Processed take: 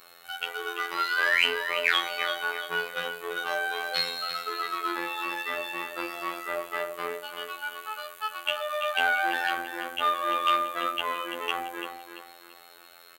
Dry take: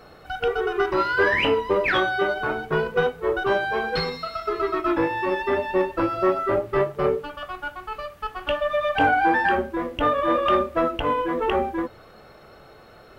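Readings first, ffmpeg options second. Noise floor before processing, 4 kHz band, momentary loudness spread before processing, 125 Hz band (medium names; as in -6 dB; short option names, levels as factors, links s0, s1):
-48 dBFS, +3.0 dB, 11 LU, -23.0 dB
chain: -filter_complex "[0:a]asplit=2[s0][s1];[s1]aecho=0:1:338|676|1014|1352:0.355|0.121|0.041|0.0139[s2];[s0][s2]amix=inputs=2:normalize=0,acontrast=50,equalizer=f=5300:w=4.3:g=-9.5,afftfilt=real='hypot(re,im)*cos(PI*b)':imag='0':win_size=2048:overlap=0.75,aderivative,volume=2.51"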